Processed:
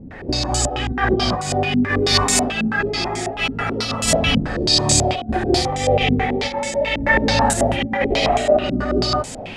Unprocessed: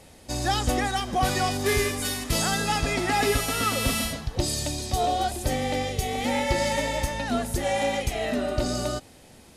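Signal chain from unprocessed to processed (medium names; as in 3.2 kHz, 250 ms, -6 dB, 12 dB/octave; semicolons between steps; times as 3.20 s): compressor with a negative ratio -31 dBFS, ratio -0.5; gated-style reverb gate 250 ms rising, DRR -2.5 dB; step-sequenced low-pass 9.2 Hz 240–7600 Hz; trim +6.5 dB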